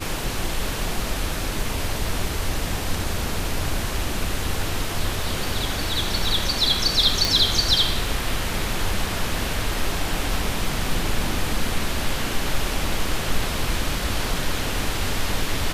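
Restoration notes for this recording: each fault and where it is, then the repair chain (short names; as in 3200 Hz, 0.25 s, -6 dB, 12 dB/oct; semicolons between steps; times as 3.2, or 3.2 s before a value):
7.25 pop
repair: de-click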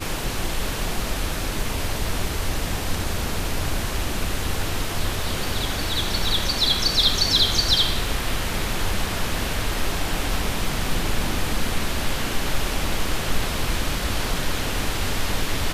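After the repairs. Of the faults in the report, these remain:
none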